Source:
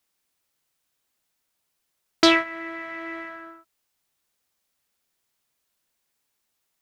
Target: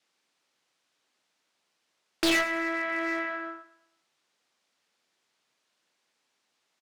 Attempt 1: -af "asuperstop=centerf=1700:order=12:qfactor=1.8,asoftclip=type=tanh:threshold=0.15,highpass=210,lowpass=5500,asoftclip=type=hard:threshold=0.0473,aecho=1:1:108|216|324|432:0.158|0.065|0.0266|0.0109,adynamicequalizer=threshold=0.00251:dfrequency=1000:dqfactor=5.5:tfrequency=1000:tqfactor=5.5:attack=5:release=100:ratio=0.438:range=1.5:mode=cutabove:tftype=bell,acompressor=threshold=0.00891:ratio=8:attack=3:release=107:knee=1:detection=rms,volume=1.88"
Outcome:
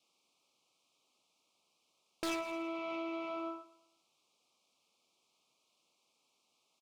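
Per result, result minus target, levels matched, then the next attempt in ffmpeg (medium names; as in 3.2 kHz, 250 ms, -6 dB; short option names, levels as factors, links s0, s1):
compression: peak gain reduction +13.5 dB; 2 kHz band -6.5 dB
-af "asuperstop=centerf=1700:order=12:qfactor=1.8,asoftclip=type=tanh:threshold=0.15,highpass=210,lowpass=5500,asoftclip=type=hard:threshold=0.0473,aecho=1:1:108|216|324|432:0.158|0.065|0.0266|0.0109,adynamicequalizer=threshold=0.00251:dfrequency=1000:dqfactor=5.5:tfrequency=1000:tqfactor=5.5:attack=5:release=100:ratio=0.438:range=1.5:mode=cutabove:tftype=bell,volume=1.88"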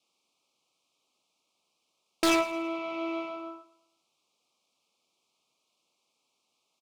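2 kHz band -6.0 dB
-af "asoftclip=type=tanh:threshold=0.15,highpass=210,lowpass=5500,asoftclip=type=hard:threshold=0.0473,aecho=1:1:108|216|324|432:0.158|0.065|0.0266|0.0109,adynamicequalizer=threshold=0.00251:dfrequency=1000:dqfactor=5.5:tfrequency=1000:tqfactor=5.5:attack=5:release=100:ratio=0.438:range=1.5:mode=cutabove:tftype=bell,volume=1.88"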